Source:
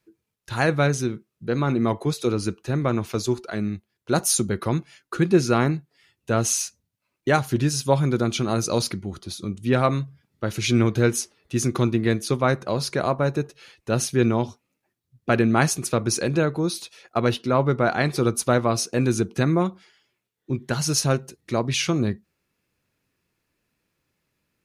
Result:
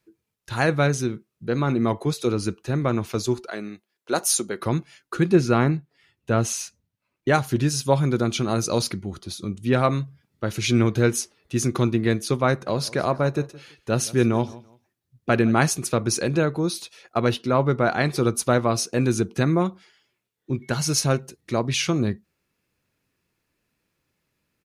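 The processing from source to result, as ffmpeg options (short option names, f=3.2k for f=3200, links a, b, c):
-filter_complex "[0:a]asettb=1/sr,asplit=3[a][b][c];[a]atrim=end=3.484[d];[b]atrim=start=3.48:end=4.6,asetpts=PTS-STARTPTS,afade=t=in:d=0.004:c=qsin,afade=t=out:st=1.116:d=0.004:c=qsin,highpass=340[e];[c]atrim=start=4.596[f];[d][e]acrossfade=d=0.004:c1=hsin:c2=qsin[g];[g][f]acrossfade=d=0.004:c1=qsin:c2=hsin,asettb=1/sr,asplit=3[h][i][j];[h]atrim=end=5.354[k];[i]atrim=start=5.35:end=7.32,asetpts=PTS-STARTPTS,afade=t=in:d=0.004:c=qsin,afade=t=out:st=1.966:d=0.004:c=qsin,bass=f=250:g=2,treble=f=4k:g=-6[l];[j]atrim=start=7.316[m];[k][l]acrossfade=d=0.004:c1=hsin:c2=qsin[n];[n][m]acrossfade=d=0.004:c1=qsin:c2=hsin,asplit=3[o][p][q];[o]afade=t=out:st=12.66:d=0.02[r];[p]aecho=1:1:167|334:0.0944|0.0236,afade=t=in:st=12.66:d=0.02,afade=t=out:st=15.52:d=0.02[s];[q]afade=t=in:st=15.52:d=0.02[t];[r][s][t]amix=inputs=3:normalize=0,asettb=1/sr,asplit=3[u][v][w];[u]atrim=end=20.624[x];[v]atrim=start=20.62:end=21.19,asetpts=PTS-STARTPTS,afade=t=in:d=0.004:c=qsin,afade=t=out:st=0.566:d=0.004:c=qsin,aeval=exprs='val(0)+0.00251*sin(2*PI*2200*n/s)':c=same[y];[w]atrim=start=21.186[z];[x][y]acrossfade=d=0.004:c1=hsin:c2=qsin[aa];[aa][z]acrossfade=d=0.004:c1=qsin:c2=hsin"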